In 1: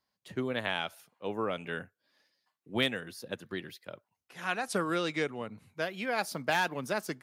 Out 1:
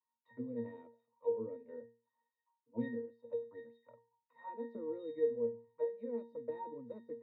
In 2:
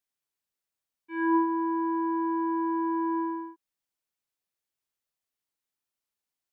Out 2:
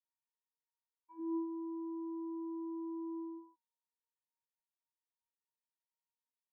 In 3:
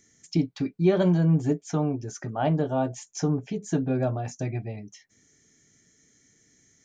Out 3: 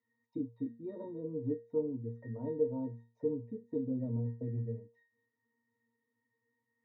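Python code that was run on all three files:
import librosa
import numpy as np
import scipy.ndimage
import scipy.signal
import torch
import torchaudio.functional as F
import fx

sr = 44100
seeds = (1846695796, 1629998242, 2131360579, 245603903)

y = fx.auto_wah(x, sr, base_hz=350.0, top_hz=1100.0, q=3.6, full_db=-29.0, direction='down')
y = fx.octave_resonator(y, sr, note='A#', decay_s=0.36)
y = y * librosa.db_to_amplitude(17.5)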